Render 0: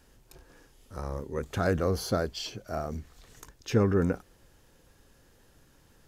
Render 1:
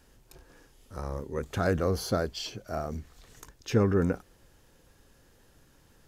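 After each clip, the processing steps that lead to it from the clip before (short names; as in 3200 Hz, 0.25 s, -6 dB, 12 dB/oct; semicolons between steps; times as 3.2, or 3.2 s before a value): nothing audible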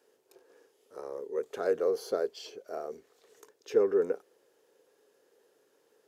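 resonant high-pass 430 Hz, resonance Q 5.1; gain -9 dB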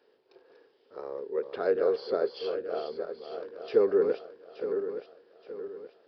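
regenerating reverse delay 0.437 s, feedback 62%, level -7 dB; downsampling 11025 Hz; gain +2 dB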